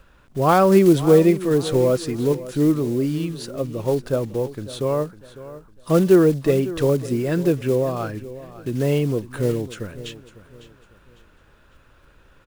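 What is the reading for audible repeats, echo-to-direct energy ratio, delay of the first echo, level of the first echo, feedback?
2, -15.5 dB, 552 ms, -16.0 dB, 33%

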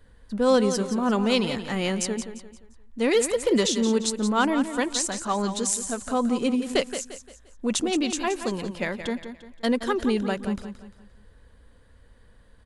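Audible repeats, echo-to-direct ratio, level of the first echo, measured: 3, -9.5 dB, -10.0 dB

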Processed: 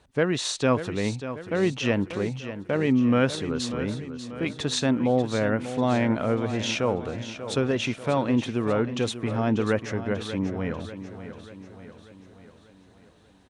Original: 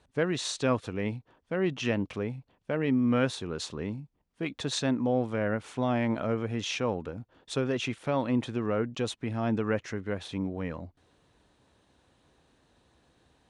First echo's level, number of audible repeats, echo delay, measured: -11.5 dB, 5, 590 ms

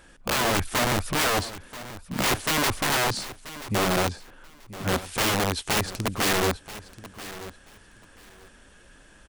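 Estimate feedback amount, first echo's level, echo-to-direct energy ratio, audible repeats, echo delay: 19%, -15.5 dB, -15.5 dB, 2, 983 ms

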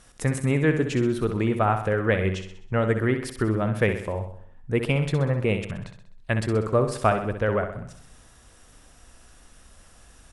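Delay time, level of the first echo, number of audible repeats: 64 ms, -8.5 dB, 5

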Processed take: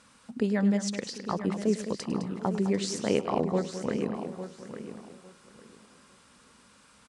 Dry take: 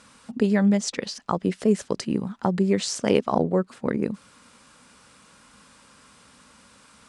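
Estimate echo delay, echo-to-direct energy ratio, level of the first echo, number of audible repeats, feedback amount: 102 ms, -6.5 dB, -15.5 dB, 8, no regular repeats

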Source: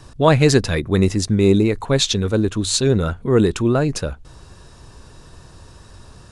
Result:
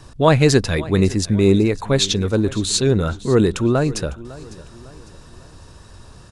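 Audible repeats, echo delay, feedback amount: 3, 553 ms, 42%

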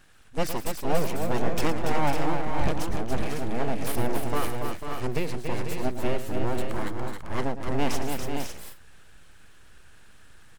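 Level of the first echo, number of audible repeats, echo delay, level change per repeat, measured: -12.0 dB, 5, 112 ms, no regular repeats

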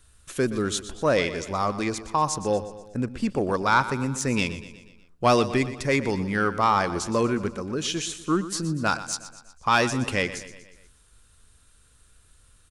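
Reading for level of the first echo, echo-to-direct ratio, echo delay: -14.0 dB, -12.5 dB, 121 ms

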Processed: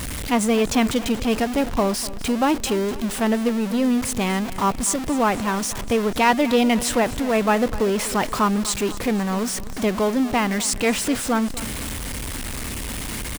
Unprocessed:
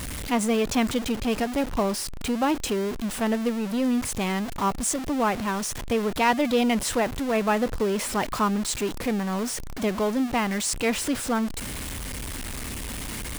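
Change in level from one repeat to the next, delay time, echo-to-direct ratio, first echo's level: -5.0 dB, 247 ms, -15.5 dB, -17.0 dB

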